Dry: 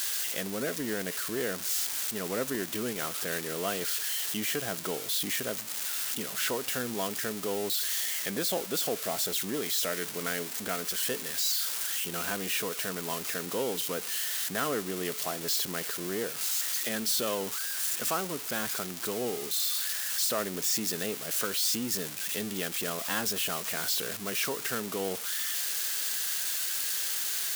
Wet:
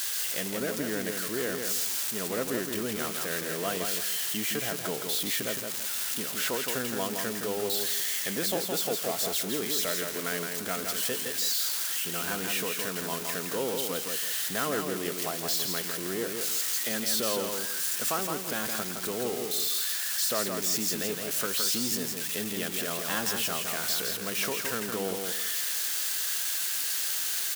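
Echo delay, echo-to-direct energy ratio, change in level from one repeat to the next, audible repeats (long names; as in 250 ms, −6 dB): 166 ms, −4.5 dB, −11.5 dB, 3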